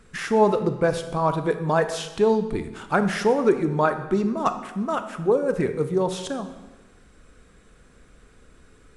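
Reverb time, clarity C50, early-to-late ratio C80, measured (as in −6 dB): 1.2 s, 10.5 dB, 12.5 dB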